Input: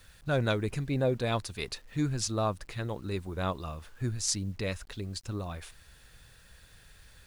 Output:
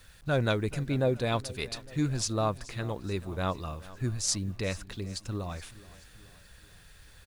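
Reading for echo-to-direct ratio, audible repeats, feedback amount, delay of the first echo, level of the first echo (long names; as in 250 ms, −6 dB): −17.5 dB, 3, 53%, 428 ms, −19.0 dB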